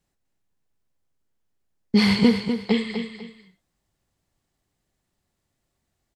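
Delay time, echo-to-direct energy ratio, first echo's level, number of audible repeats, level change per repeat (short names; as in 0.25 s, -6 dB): 0.248 s, -7.5 dB, -8.0 dB, 2, -11.0 dB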